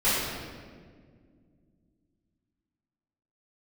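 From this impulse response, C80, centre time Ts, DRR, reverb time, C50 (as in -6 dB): 0.0 dB, 115 ms, -13.5 dB, 1.9 s, -2.0 dB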